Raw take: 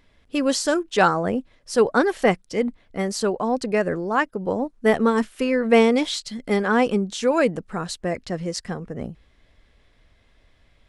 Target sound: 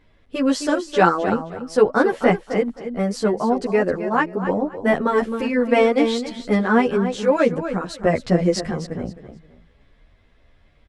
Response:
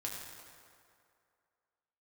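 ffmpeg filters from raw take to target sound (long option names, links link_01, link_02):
-filter_complex "[0:a]asettb=1/sr,asplit=3[link_01][link_02][link_03];[link_01]atrim=end=7.984[link_04];[link_02]atrim=start=7.98:end=8.7,asetpts=PTS-STARTPTS,afade=type=in:duration=0.004:curve=qsin,afade=type=out:start_time=0.716:duration=0.004:curve=qsin,acontrast=62[link_05];[link_03]atrim=start=8.696[link_06];[link_04][link_05]acrossfade=duration=0.004:curve1=hsin:curve2=qsin[link_07];[link_07][link_06]acrossfade=duration=0.004:curve1=qsin:curve2=hsin,highshelf=frequency=3500:gain=-10,asplit=2[link_08][link_09];[link_09]aecho=0:1:263|526|789:0.282|0.062|0.0136[link_10];[link_08][link_10]amix=inputs=2:normalize=0,asplit=2[link_11][link_12];[link_12]adelay=11,afreqshift=1.5[link_13];[link_11][link_13]amix=inputs=2:normalize=1,volume=5.5dB"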